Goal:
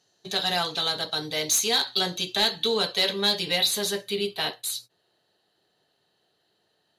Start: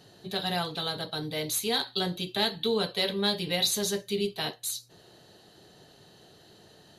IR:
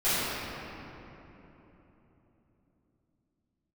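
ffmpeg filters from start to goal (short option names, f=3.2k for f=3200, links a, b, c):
-filter_complex "[0:a]asetnsamples=n=441:p=0,asendcmd='3.58 equalizer g -5.5',equalizer=f=6.3k:w=2.4:g=11.5,agate=range=-19dB:threshold=-46dB:ratio=16:detection=peak,asplit=2[a][b];[b]highpass=f=720:p=1,volume=11dB,asoftclip=type=tanh:threshold=-11dB[c];[a][c]amix=inputs=2:normalize=0,lowpass=f=7.9k:p=1,volume=-6dB"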